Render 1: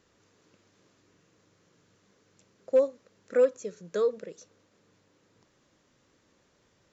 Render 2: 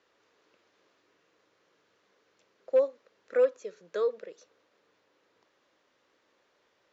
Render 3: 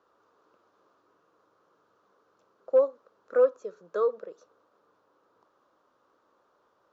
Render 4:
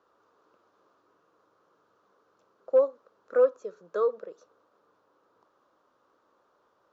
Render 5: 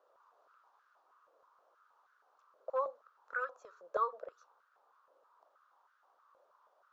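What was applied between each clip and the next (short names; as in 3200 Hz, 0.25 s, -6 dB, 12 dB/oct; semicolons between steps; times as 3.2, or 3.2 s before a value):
three-band isolator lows -19 dB, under 350 Hz, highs -21 dB, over 5200 Hz
resonant high shelf 1600 Hz -8 dB, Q 3; gain +1.5 dB
nothing audible
stepped high-pass 6.3 Hz 580–1500 Hz; gain -7 dB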